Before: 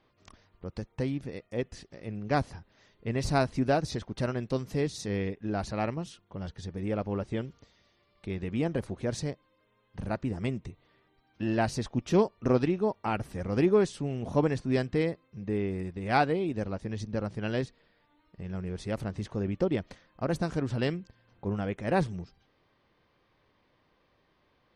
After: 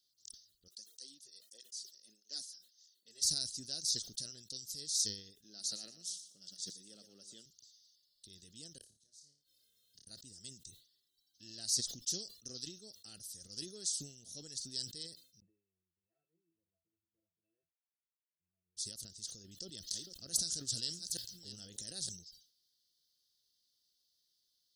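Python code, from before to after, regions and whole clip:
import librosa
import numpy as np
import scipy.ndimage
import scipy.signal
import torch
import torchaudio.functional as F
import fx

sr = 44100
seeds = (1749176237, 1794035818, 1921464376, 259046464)

y = fx.chain(x, sr, fx.bessel_highpass(hz=350.0, order=4),
    fx.flanger_cancel(hz=1.6, depth_ms=4.3), at=(0.68, 3.22))
y = fx.chain(y, sr, fx.highpass(hz=160.0, slope=24),
    fx.echo_feedback(ms=119, feedback_pct=23, wet_db=-12), at=(5.44, 7.46))
y = fx.chain(y, sr, fx.gate_flip(shuts_db=-29.0, range_db=-30),
    fx.room_flutter(wall_m=4.8, rt60_s=0.28),
    fx.band_squash(depth_pct=70), at=(8.78, 10.07))
y = fx.chain(y, sr, fx.formant_cascade(vowel='e'),
    fx.octave_resonator(note='E', decay_s=0.21), at=(15.4, 18.77))
y = fx.chain(y, sr, fx.reverse_delay(ms=433, wet_db=-13),
    fx.env_flatten(amount_pct=50), at=(19.44, 22.09))
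y = scipy.signal.sosfilt(scipy.signal.cheby2(4, 40, 2500.0, 'highpass', fs=sr, output='sos'), y)
y = fx.sustainer(y, sr, db_per_s=110.0)
y = y * 10.0 ** (11.0 / 20.0)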